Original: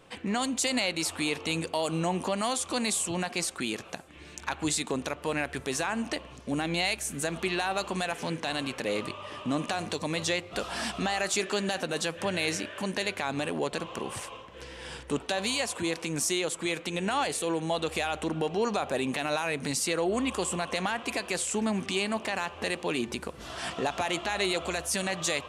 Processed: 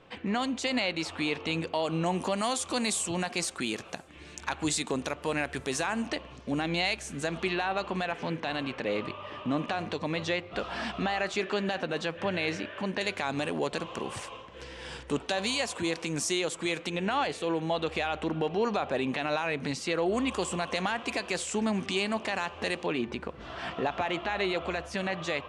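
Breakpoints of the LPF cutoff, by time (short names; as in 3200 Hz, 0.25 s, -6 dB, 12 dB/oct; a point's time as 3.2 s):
4000 Hz
from 2.06 s 9600 Hz
from 6.06 s 5500 Hz
from 7.53 s 3300 Hz
from 13.01 s 7600 Hz
from 16.9 s 4000 Hz
from 20.06 s 6800 Hz
from 22.86 s 2900 Hz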